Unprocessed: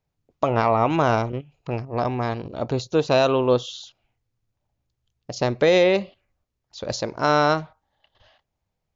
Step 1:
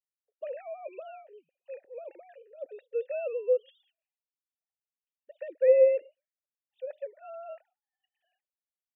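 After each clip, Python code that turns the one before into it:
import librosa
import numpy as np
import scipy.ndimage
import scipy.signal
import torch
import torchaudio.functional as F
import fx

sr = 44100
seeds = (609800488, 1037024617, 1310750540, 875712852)

y = fx.sine_speech(x, sr)
y = fx.vowel_filter(y, sr, vowel='e')
y = y * 10.0 ** (-6.0 / 20.0)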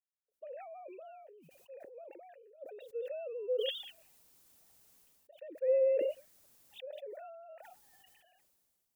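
y = fx.peak_eq(x, sr, hz=2100.0, db=-9.0, octaves=3.0)
y = fx.sustainer(y, sr, db_per_s=24.0)
y = y * 10.0 ** (-7.0 / 20.0)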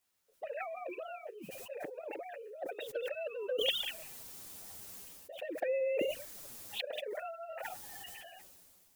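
y = fx.env_flanger(x, sr, rest_ms=11.1, full_db=-29.5)
y = fx.spectral_comp(y, sr, ratio=2.0)
y = y * 10.0 ** (4.5 / 20.0)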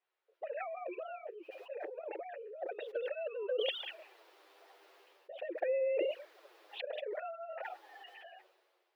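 y = fx.brickwall_highpass(x, sr, low_hz=320.0)
y = fx.air_absorb(y, sr, metres=370.0)
y = y * 10.0 ** (1.5 / 20.0)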